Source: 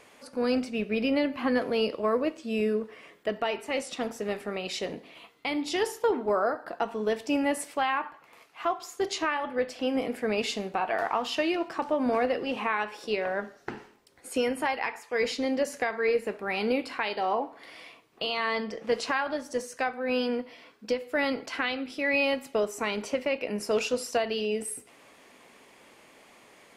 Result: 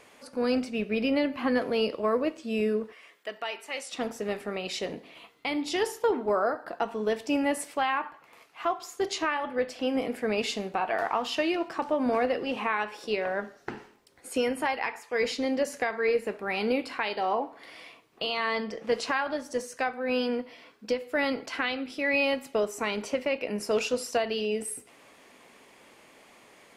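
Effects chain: 2.92–3.94 HPF 1300 Hz 6 dB/oct

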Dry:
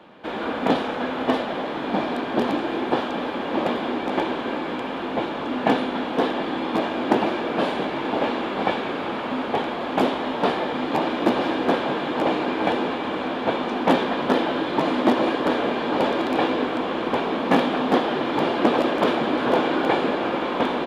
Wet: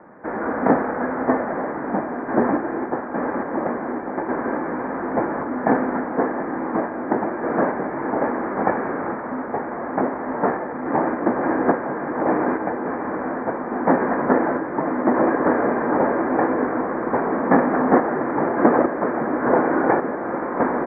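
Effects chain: steep low-pass 2000 Hz 72 dB/oct; random-step tremolo 3.5 Hz; gain +4 dB

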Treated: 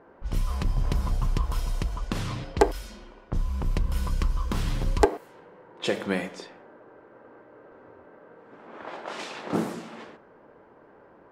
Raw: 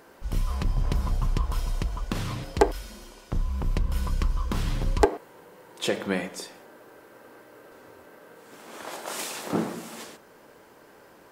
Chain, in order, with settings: low-pass opened by the level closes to 1200 Hz, open at -24 dBFS; 8.67–9.5 high shelf 8800 Hz -9.5 dB

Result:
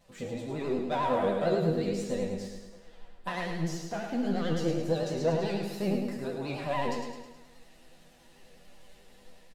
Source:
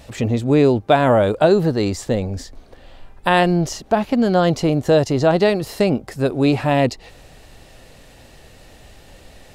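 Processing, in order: AGC gain up to 3.5 dB; sample leveller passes 1; resonator bank E3 minor, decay 0.49 s; vibrato 11 Hz 77 cents; feedback echo 0.106 s, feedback 53%, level -5.5 dB

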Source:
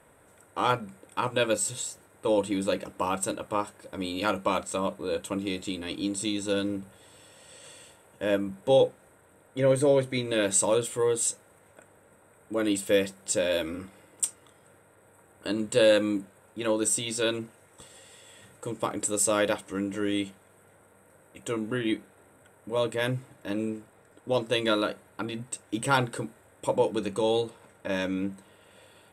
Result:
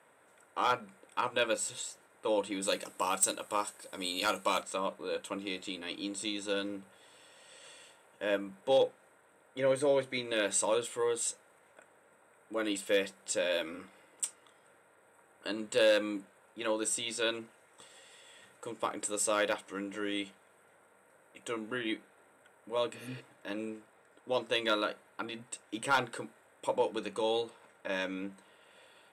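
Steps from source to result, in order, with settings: weighting filter A; 22.96–23.18 spectral repair 290–5800 Hz before; tone controls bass +4 dB, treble -3 dB, from 2.62 s treble +11 dB, from 4.61 s treble -3 dB; hard clip -16 dBFS, distortion -22 dB; gain -3 dB

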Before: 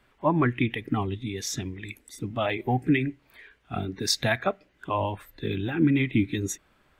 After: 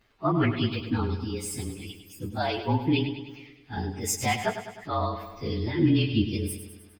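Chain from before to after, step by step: inharmonic rescaling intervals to 112%; feedback echo 0.102 s, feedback 58%, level -10 dB; gain +1.5 dB

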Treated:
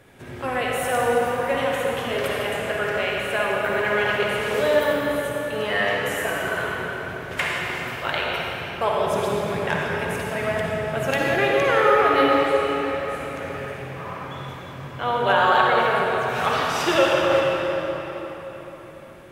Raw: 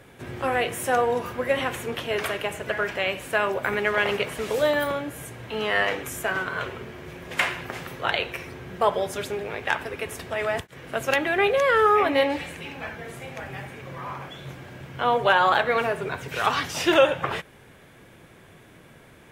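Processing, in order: 8.99–11.16 bell 160 Hz +10 dB 1.4 oct; reverb RT60 4.3 s, pre-delay 45 ms, DRR -3.5 dB; gain -2.5 dB

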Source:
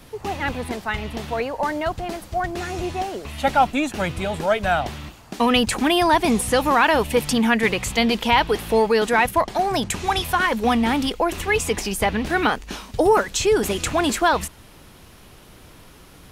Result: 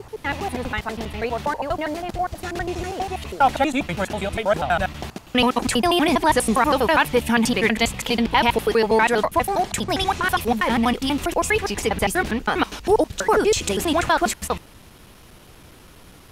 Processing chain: slices in reverse order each 81 ms, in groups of 3

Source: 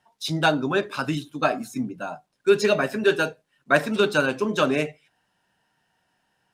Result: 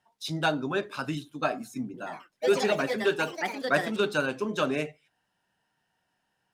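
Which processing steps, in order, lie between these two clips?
1.85–4.4 echoes that change speed 90 ms, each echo +4 st, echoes 3, each echo -6 dB; gain -6 dB

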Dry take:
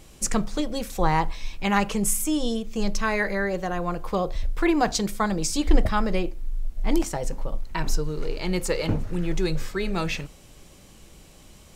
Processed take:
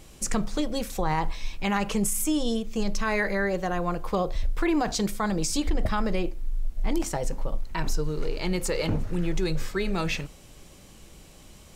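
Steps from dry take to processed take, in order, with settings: limiter -16.5 dBFS, peak gain reduction 11 dB

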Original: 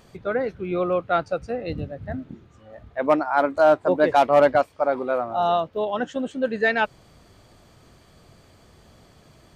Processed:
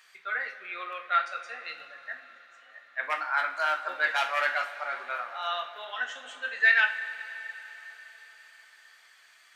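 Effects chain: resonant high-pass 1800 Hz, resonance Q 2.4; two-slope reverb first 0.36 s, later 4.6 s, from -18 dB, DRR 2 dB; gain -3.5 dB

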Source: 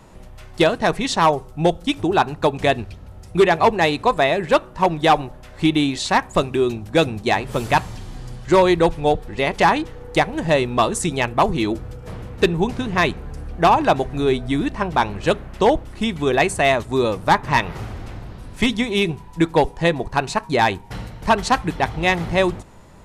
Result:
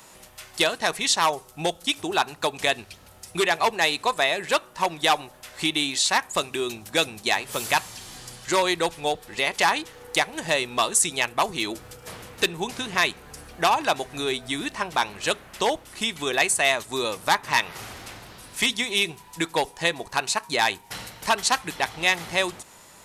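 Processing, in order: tilt +4 dB/oct; in parallel at 0 dB: compressor, threshold -28 dBFS, peak gain reduction 17.5 dB; on the sum: gain -7 dB

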